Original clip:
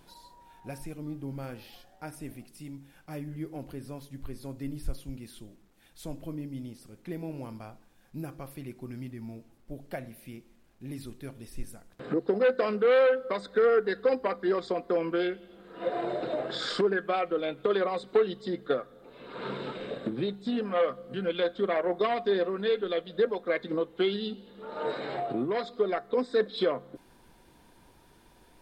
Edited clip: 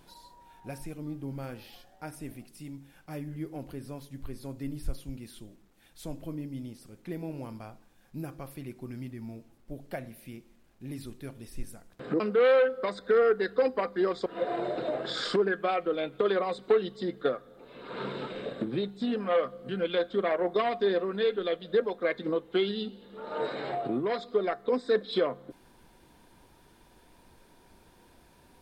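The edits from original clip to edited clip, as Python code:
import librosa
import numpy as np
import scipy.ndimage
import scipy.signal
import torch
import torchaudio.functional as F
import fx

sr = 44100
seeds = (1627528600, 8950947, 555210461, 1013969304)

y = fx.edit(x, sr, fx.cut(start_s=12.2, length_s=0.47),
    fx.cut(start_s=14.73, length_s=0.98), tone=tone)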